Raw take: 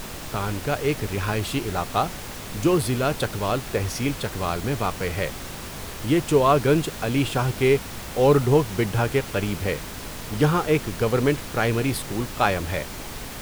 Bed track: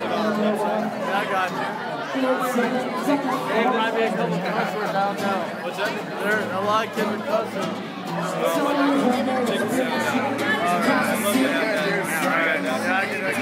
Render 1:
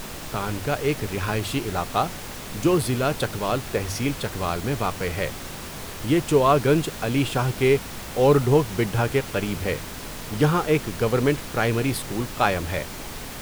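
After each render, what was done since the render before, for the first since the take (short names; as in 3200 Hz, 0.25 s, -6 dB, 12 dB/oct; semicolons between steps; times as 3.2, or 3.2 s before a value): de-hum 50 Hz, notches 2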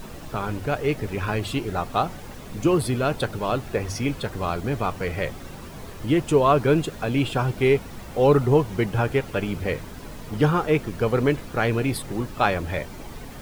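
denoiser 10 dB, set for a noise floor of -36 dBFS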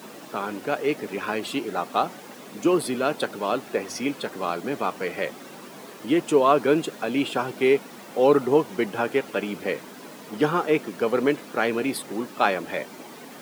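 HPF 210 Hz 24 dB/oct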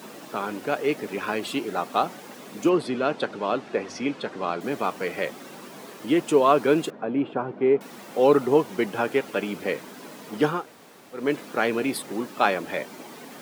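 2.69–4.61 air absorption 99 m; 6.9–7.81 Bessel low-pass 980 Hz; 10.58–11.23 room tone, crossfade 0.24 s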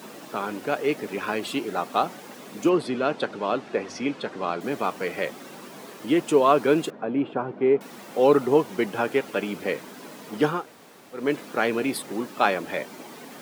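nothing audible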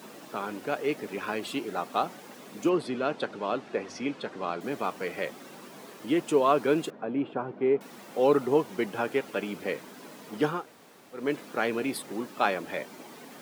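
gain -4.5 dB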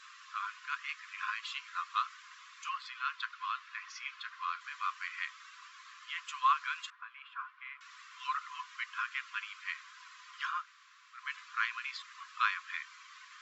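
FFT band-pass 1000–7700 Hz; high shelf 5600 Hz -8.5 dB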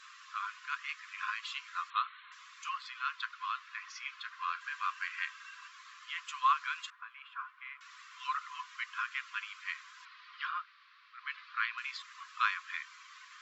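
1.9–2.32 brick-wall FIR low-pass 4300 Hz; 4.39–5.68 small resonant body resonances 870/1600/2700 Hz, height 12 dB; 10.05–11.78 Chebyshev band-pass 1100–4500 Hz, order 3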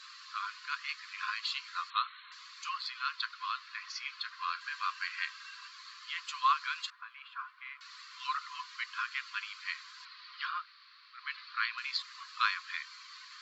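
bell 4400 Hz +14.5 dB 0.37 oct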